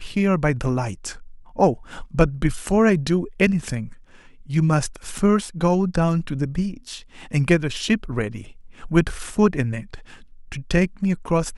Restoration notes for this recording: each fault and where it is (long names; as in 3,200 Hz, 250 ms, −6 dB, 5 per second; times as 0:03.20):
0:05.18: drop-out 3.5 ms